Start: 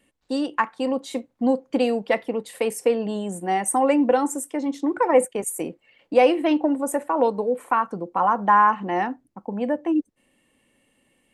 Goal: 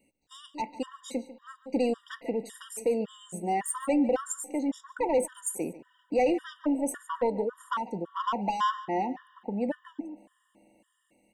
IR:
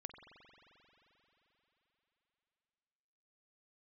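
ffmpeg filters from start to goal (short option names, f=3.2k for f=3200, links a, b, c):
-filter_complex "[0:a]lowshelf=f=75:g=-9.5,asoftclip=type=tanh:threshold=-16dB,lowshelf=f=370:g=4.5,asplit=2[a][b];[b]adelay=145.8,volume=-16dB,highshelf=f=4k:g=-3.28[c];[a][c]amix=inputs=2:normalize=0,asplit=2[d][e];[1:a]atrim=start_sample=2205,highshelf=f=4.3k:g=10.5[f];[e][f]afir=irnorm=-1:irlink=0,volume=-10.5dB[g];[d][g]amix=inputs=2:normalize=0,aexciter=amount=1.8:drive=1.1:freq=6.5k,afftfilt=real='re*gt(sin(2*PI*1.8*pts/sr)*(1-2*mod(floor(b*sr/1024/960),2)),0)':imag='im*gt(sin(2*PI*1.8*pts/sr)*(1-2*mod(floor(b*sr/1024/960),2)),0)':win_size=1024:overlap=0.75,volume=-6dB"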